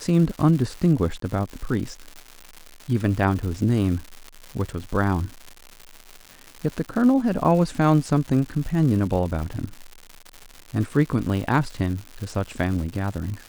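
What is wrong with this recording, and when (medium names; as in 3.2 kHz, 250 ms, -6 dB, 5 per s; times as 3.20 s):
crackle 240 per s -30 dBFS
1.20–1.22 s: dropout 23 ms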